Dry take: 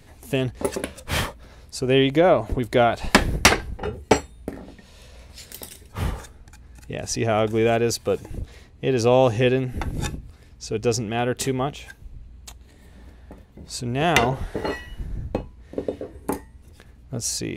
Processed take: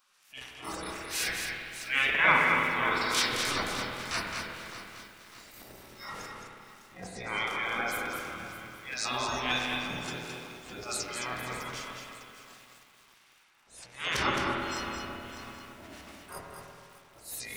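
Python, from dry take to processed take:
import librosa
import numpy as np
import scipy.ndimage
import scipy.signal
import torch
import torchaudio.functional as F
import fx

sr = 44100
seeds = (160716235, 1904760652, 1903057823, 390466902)

y = fx.bin_compress(x, sr, power=0.4)
y = fx.noise_reduce_blind(y, sr, reduce_db=27)
y = fx.spec_gate(y, sr, threshold_db=-15, keep='weak')
y = fx.band_shelf(y, sr, hz=2000.0, db=10.5, octaves=1.0, at=(0.92, 2.26), fade=0.02)
y = fx.transient(y, sr, attack_db=-10, sustain_db=10)
y = fx.harmonic_tremolo(y, sr, hz=1.4, depth_pct=70, crossover_hz=1600.0)
y = y + 10.0 ** (-6.0 / 20.0) * np.pad(y, (int(216 * sr / 1000.0), 0))[:len(y)]
y = fx.rev_spring(y, sr, rt60_s=2.3, pass_ms=(32, 48, 54), chirp_ms=50, drr_db=0.5)
y = fx.echo_crushed(y, sr, ms=604, feedback_pct=55, bits=7, wet_db=-13)
y = y * librosa.db_to_amplitude(-4.0)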